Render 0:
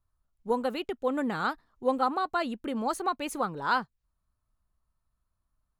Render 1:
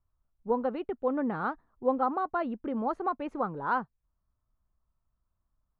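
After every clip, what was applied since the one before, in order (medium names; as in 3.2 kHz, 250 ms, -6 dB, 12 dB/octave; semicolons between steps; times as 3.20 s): low-pass 1.3 kHz 12 dB/octave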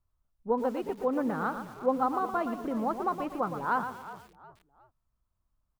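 frequency-shifting echo 362 ms, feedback 36%, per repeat -45 Hz, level -15.5 dB; bit-crushed delay 117 ms, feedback 35%, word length 8-bit, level -8.5 dB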